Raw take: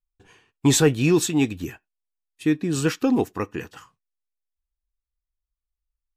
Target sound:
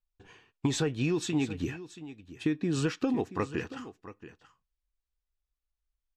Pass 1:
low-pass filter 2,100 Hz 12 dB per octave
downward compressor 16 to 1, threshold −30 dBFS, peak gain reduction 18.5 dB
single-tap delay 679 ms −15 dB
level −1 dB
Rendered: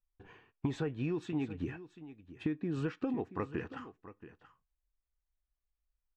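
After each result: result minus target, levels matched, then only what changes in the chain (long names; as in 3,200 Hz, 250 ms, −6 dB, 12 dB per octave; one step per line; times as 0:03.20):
8,000 Hz band −16.0 dB; downward compressor: peak gain reduction +6 dB
change: low-pass filter 5,700 Hz 12 dB per octave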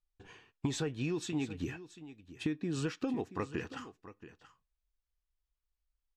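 downward compressor: peak gain reduction +6 dB
change: downward compressor 16 to 1, threshold −23.5 dBFS, peak gain reduction 13 dB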